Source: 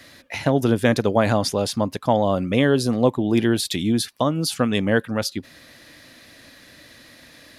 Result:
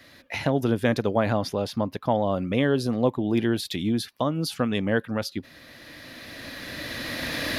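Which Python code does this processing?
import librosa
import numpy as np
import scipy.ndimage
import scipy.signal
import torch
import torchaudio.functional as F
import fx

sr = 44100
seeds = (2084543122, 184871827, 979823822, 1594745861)

y = fx.recorder_agc(x, sr, target_db=-12.0, rise_db_per_s=11.0, max_gain_db=30)
y = fx.peak_eq(y, sr, hz=8100.0, db=fx.steps((0.0, -7.0), (1.19, -14.5), (2.31, -8.5)), octaves=1.0)
y = y * librosa.db_to_amplitude(-4.5)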